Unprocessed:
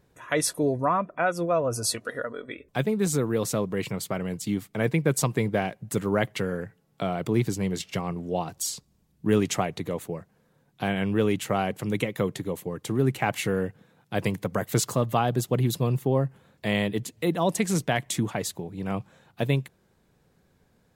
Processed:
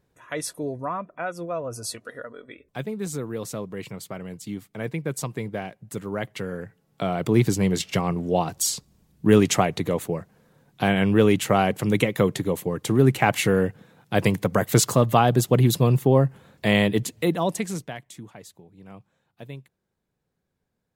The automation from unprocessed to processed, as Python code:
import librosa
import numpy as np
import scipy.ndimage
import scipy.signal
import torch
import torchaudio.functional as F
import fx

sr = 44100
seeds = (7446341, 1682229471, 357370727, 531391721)

y = fx.gain(x, sr, db=fx.line((6.12, -5.5), (7.49, 6.0), (17.09, 6.0), (17.67, -3.5), (18.08, -14.5)))